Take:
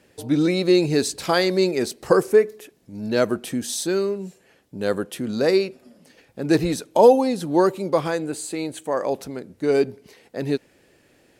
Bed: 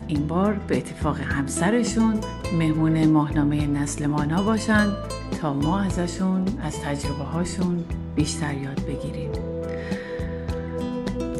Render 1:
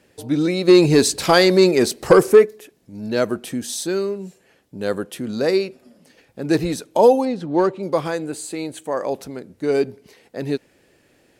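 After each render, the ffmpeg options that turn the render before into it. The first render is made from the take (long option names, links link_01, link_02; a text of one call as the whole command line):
ffmpeg -i in.wav -filter_complex "[0:a]asplit=3[link_01][link_02][link_03];[link_01]afade=type=out:start_time=0.67:duration=0.02[link_04];[link_02]acontrast=83,afade=type=in:start_time=0.67:duration=0.02,afade=type=out:start_time=2.44:duration=0.02[link_05];[link_03]afade=type=in:start_time=2.44:duration=0.02[link_06];[link_04][link_05][link_06]amix=inputs=3:normalize=0,asettb=1/sr,asplit=3[link_07][link_08][link_09];[link_07]atrim=end=7.254[link_10];[link_08]atrim=start=7.25:end=7.83,asetpts=PTS-STARTPTS,afade=type=in:duration=0.004:curve=qsin,afade=type=out:start_time=0.576:duration=0.004:curve=qsin,adynamicsmooth=sensitivity=1.5:basefreq=3300[link_11];[link_09]atrim=start=7.826[link_12];[link_10][link_11]acrossfade=duration=0.004:curve1=hsin:curve2=qsin[link_13];[link_13][link_12]acrossfade=duration=0.004:curve1=qsin:curve2=hsin" out.wav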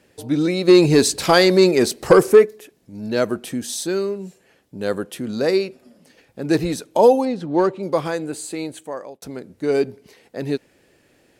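ffmpeg -i in.wav -filter_complex "[0:a]asplit=2[link_01][link_02];[link_01]atrim=end=9.22,asetpts=PTS-STARTPTS,afade=type=out:start_time=8.64:duration=0.58[link_03];[link_02]atrim=start=9.22,asetpts=PTS-STARTPTS,afade=type=in:duration=0.004:curve=hsin[link_04];[link_03][link_04]concat=n=2:v=0:a=1" out.wav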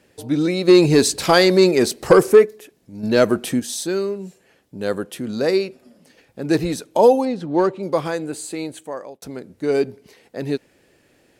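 ffmpeg -i in.wav -filter_complex "[0:a]asettb=1/sr,asplit=3[link_01][link_02][link_03];[link_01]atrim=end=3.034[link_04];[link_02]atrim=start=3.03:end=3.6,asetpts=PTS-STARTPTS,afade=type=in:duration=0.004:curve=qsin,afade=type=out:start_time=0.566:duration=0.004:curve=qsin,acontrast=40[link_05];[link_03]atrim=start=3.596[link_06];[link_04][link_05]acrossfade=duration=0.004:curve1=hsin:curve2=qsin[link_07];[link_07][link_06]acrossfade=duration=0.004:curve1=qsin:curve2=hsin" out.wav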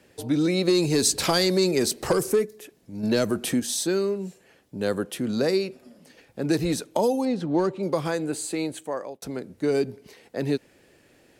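ffmpeg -i in.wav -filter_complex "[0:a]acrossover=split=240|4300[link_01][link_02][link_03];[link_01]alimiter=limit=-24dB:level=0:latency=1[link_04];[link_02]acompressor=threshold=-22dB:ratio=6[link_05];[link_04][link_05][link_03]amix=inputs=3:normalize=0" out.wav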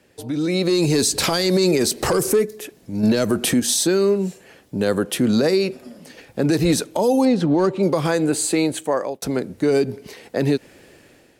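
ffmpeg -i in.wav -af "alimiter=limit=-19.5dB:level=0:latency=1:release=106,dynaudnorm=framelen=230:gausssize=5:maxgain=10dB" out.wav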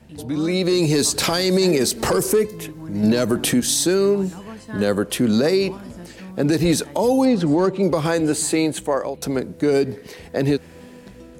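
ffmpeg -i in.wav -i bed.wav -filter_complex "[1:a]volume=-15dB[link_01];[0:a][link_01]amix=inputs=2:normalize=0" out.wav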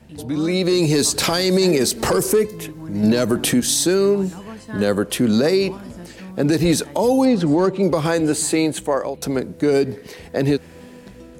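ffmpeg -i in.wav -af "volume=1dB" out.wav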